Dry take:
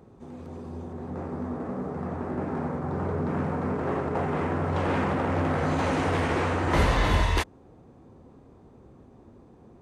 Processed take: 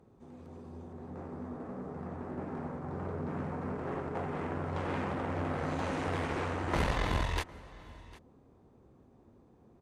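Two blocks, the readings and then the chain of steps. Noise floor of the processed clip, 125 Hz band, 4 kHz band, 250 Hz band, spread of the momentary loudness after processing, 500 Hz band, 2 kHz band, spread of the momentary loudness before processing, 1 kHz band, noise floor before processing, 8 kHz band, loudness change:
-62 dBFS, -9.0 dB, -8.0 dB, -8.5 dB, 18 LU, -8.5 dB, -8.0 dB, 14 LU, -8.5 dB, -53 dBFS, -8.0 dB, -8.5 dB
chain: echo 0.754 s -19.5 dB; added harmonics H 2 -6 dB, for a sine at -10.5 dBFS; gain -9 dB

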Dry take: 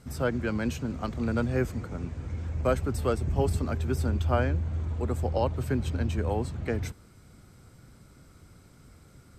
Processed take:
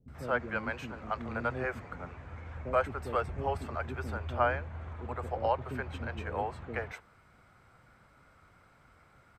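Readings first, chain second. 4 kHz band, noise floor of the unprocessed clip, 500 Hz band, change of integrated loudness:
-6.0 dB, -55 dBFS, -4.0 dB, -5.5 dB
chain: three-band isolator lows -15 dB, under 560 Hz, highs -19 dB, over 2600 Hz; bands offset in time lows, highs 80 ms, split 380 Hz; gain +3.5 dB

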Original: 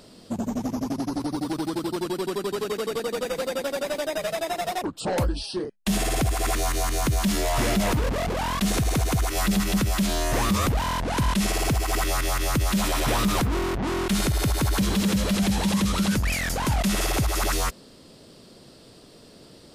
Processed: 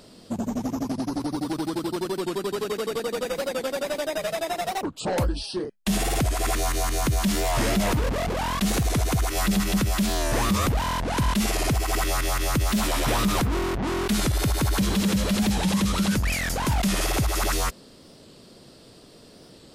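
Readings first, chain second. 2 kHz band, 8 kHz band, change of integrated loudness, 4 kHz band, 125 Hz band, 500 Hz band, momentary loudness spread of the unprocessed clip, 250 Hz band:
0.0 dB, 0.0 dB, 0.0 dB, 0.0 dB, 0.0 dB, 0.0 dB, 6 LU, 0.0 dB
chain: record warp 45 rpm, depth 100 cents

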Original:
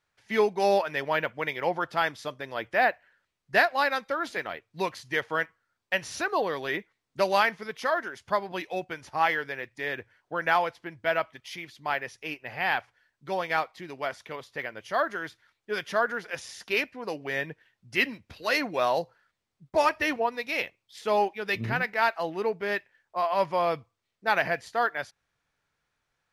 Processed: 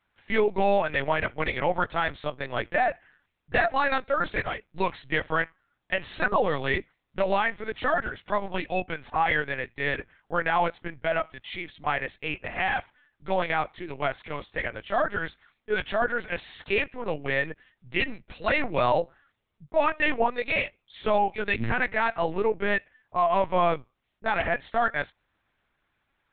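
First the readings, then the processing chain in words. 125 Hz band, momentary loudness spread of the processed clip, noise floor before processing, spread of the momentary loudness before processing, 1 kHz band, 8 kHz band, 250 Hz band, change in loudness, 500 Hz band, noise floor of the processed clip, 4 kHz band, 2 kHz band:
+5.5 dB, 9 LU, -82 dBFS, 12 LU, +1.0 dB, under -30 dB, +3.0 dB, +1.0 dB, +1.5 dB, -78 dBFS, -1.0 dB, +1.0 dB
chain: limiter -18 dBFS, peak gain reduction 9.5 dB; LPC vocoder at 8 kHz pitch kept; gain +4.5 dB

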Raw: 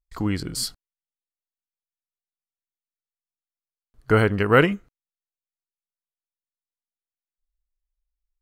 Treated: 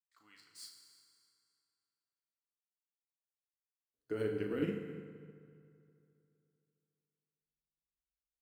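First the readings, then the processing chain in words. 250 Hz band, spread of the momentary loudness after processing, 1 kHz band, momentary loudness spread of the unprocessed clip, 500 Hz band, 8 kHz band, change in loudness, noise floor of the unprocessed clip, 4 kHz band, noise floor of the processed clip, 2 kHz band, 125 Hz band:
-15.5 dB, 21 LU, -29.5 dB, 12 LU, -16.5 dB, n/a, -18.0 dB, under -85 dBFS, -22.0 dB, under -85 dBFS, -25.5 dB, -21.5 dB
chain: median filter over 3 samples; doubler 38 ms -6 dB; on a send: feedback echo 0.302 s, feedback 38%, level -21 dB; on the sum: high-pass sweep 1200 Hz -> 96 Hz, 2.66–6.01; limiter -7 dBFS, peak gain reduction 10 dB; passive tone stack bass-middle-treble 10-0-1; FDN reverb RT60 2.8 s, high-frequency decay 0.65×, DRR 1 dB; upward expander 1.5:1, over -52 dBFS; gain +4 dB

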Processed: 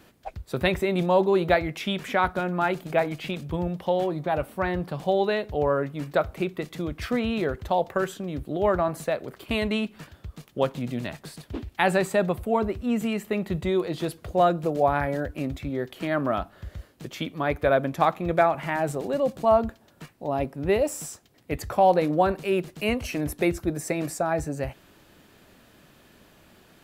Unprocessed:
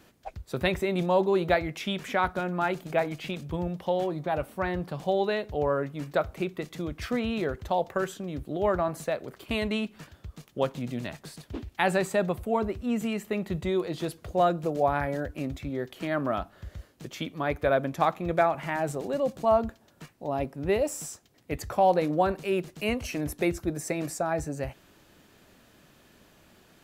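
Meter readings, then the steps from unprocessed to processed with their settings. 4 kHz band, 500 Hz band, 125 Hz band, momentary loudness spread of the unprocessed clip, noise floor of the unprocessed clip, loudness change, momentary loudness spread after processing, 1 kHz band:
+2.5 dB, +3.0 dB, +3.0 dB, 12 LU, -60 dBFS, +3.0 dB, 12 LU, +3.0 dB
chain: bell 6300 Hz -3 dB 0.64 oct; gain +3 dB

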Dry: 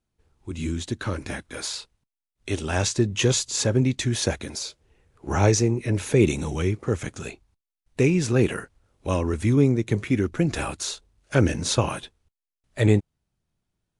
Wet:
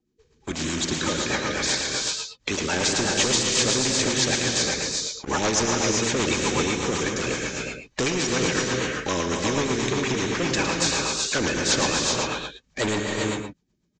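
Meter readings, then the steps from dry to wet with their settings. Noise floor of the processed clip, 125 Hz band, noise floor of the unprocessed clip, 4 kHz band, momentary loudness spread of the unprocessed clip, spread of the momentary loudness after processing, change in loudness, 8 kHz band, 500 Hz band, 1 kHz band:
-69 dBFS, -8.0 dB, under -85 dBFS, +8.5 dB, 15 LU, 8 LU, +0.5 dB, +7.0 dB, -0.5 dB, +5.5 dB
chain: bin magnitudes rounded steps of 30 dB; bell 100 Hz -11 dB 1.4 oct; notch comb 690 Hz; sample leveller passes 2; downsampling 16000 Hz; in parallel at 0 dB: limiter -14.5 dBFS, peak gain reduction 5.5 dB; on the sum: bell 3000 Hz -2 dB; on a send: echo 0.111 s -11.5 dB; on the sum: non-linear reverb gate 0.43 s rising, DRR 1.5 dB; rotary speaker horn 8 Hz; spectral compressor 2:1; gain -8.5 dB

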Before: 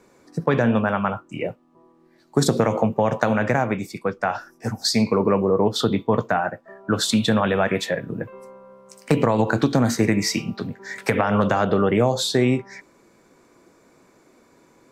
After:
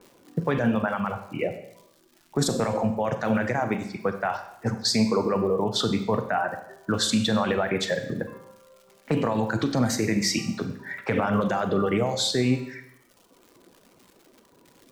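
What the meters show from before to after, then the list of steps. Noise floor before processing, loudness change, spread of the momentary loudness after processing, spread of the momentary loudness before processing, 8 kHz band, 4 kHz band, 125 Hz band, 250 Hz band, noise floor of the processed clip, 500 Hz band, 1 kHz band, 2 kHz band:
-57 dBFS, -4.0 dB, 9 LU, 11 LU, -1.5 dB, -1.0 dB, -4.5 dB, -4.0 dB, -59 dBFS, -5.0 dB, -4.5 dB, -4.0 dB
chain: limiter -13.5 dBFS, peak gain reduction 10.5 dB; low-pass opened by the level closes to 1200 Hz, open at -19 dBFS; crackle 290/s -41 dBFS; reverb removal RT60 1.1 s; Schroeder reverb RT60 0.78 s, combs from 32 ms, DRR 8 dB

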